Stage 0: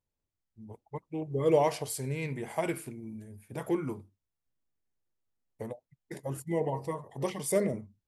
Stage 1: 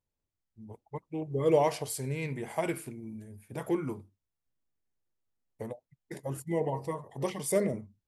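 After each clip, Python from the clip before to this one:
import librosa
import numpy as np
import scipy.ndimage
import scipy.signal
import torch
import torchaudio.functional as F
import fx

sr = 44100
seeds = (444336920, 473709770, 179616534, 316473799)

y = x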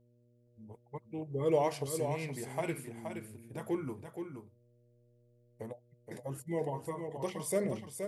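y = fx.dmg_buzz(x, sr, base_hz=120.0, harmonics=5, level_db=-63.0, tilt_db=-5, odd_only=False)
y = y + 10.0 ** (-7.0 / 20.0) * np.pad(y, (int(473 * sr / 1000.0), 0))[:len(y)]
y = F.gain(torch.from_numpy(y), -4.5).numpy()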